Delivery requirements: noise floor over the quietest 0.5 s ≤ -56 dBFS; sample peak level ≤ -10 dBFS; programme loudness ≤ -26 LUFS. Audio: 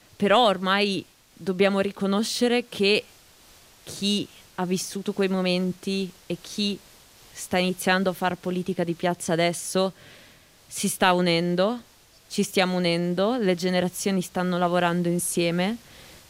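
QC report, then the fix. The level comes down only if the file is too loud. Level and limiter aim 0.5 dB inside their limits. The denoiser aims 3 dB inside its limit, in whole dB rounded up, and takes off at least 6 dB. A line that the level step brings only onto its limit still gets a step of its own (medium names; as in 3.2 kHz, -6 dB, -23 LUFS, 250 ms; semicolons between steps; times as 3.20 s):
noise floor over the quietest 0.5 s -54 dBFS: fail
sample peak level -6.5 dBFS: fail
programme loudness -24.5 LUFS: fail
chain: noise reduction 6 dB, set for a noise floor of -54 dBFS; trim -2 dB; peak limiter -10.5 dBFS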